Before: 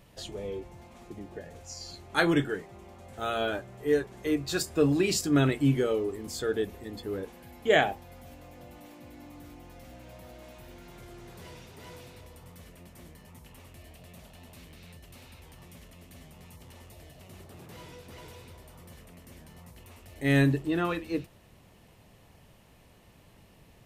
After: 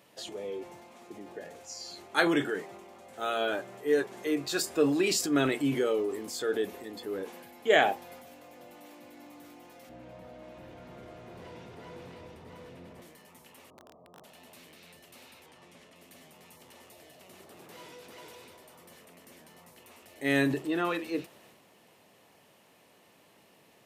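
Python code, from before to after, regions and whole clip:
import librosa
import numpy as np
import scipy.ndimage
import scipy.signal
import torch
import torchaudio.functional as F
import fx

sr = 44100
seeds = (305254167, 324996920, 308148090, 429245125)

y = fx.chain(x, sr, fx.riaa(side='playback'),
    fx.hum_notches(base_hz=50, count=8),
    fx.echo_single(ms=680, db=-3.5), at=(9.89, 13.02))
y = fx.chain(y, sr, fx.brickwall_lowpass(high_hz=1300.0),
    fx.overflow_wrap(gain_db=43.0), at=(13.7, 14.24))
y = fx.chain(y, sr, fx.lowpass(hz=9900.0, slope=12),
    fx.high_shelf(hz=5600.0, db=-6.0), at=(15.46, 15.96))
y = scipy.signal.sosfilt(scipy.signal.butter(2, 280.0, 'highpass', fs=sr, output='sos'), y)
y = fx.transient(y, sr, attack_db=0, sustain_db=5)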